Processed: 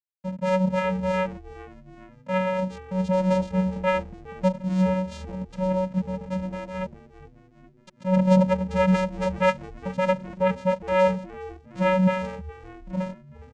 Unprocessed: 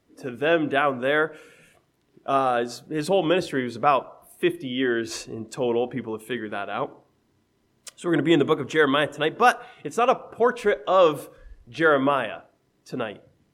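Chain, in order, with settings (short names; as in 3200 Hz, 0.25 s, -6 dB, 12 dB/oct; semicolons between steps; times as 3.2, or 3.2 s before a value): level-crossing sampler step -33 dBFS; vocoder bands 4, square 186 Hz; frequency-shifting echo 0.414 s, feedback 56%, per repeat -110 Hz, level -18.5 dB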